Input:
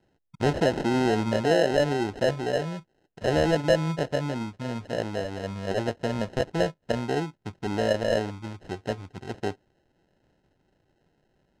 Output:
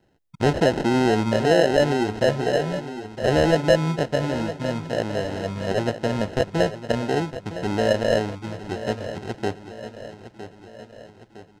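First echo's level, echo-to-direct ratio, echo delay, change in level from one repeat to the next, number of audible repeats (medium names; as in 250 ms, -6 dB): -12.5 dB, -11.0 dB, 960 ms, -5.5 dB, 4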